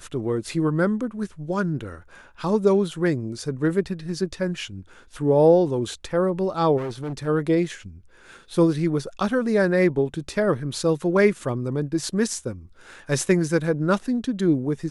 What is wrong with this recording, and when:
0:06.77–0:07.28: clipping −26 dBFS

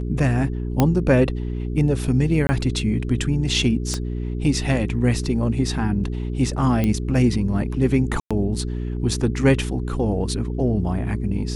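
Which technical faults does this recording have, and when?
mains hum 60 Hz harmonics 7 −26 dBFS
0:00.80: click −4 dBFS
0:02.47–0:02.49: drop-out 20 ms
0:03.94: click −12 dBFS
0:06.84: click −10 dBFS
0:08.20–0:08.31: drop-out 106 ms

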